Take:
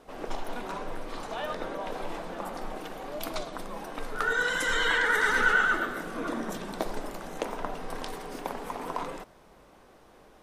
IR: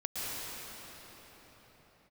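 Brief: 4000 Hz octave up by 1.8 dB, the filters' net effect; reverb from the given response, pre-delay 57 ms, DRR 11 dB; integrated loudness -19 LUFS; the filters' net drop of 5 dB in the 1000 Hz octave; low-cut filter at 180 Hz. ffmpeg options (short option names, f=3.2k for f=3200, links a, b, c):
-filter_complex "[0:a]highpass=180,equalizer=f=1k:t=o:g=-7.5,equalizer=f=4k:t=o:g=3,asplit=2[a][b];[1:a]atrim=start_sample=2205,adelay=57[c];[b][c]afir=irnorm=-1:irlink=0,volume=-17dB[d];[a][d]amix=inputs=2:normalize=0,volume=13.5dB"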